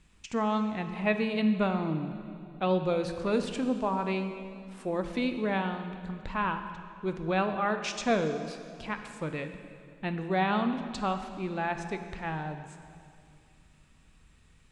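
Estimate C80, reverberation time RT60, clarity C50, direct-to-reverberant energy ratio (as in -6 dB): 9.5 dB, 2.4 s, 8.5 dB, 7.0 dB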